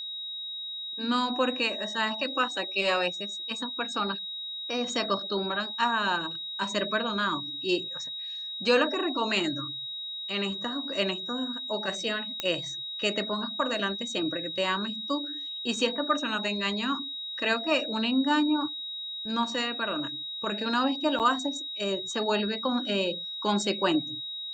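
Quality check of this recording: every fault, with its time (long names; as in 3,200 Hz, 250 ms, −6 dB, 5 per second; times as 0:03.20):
whistle 3,800 Hz −34 dBFS
0:12.40: click −13 dBFS
0:21.19–0:21.20: drop-out 8.1 ms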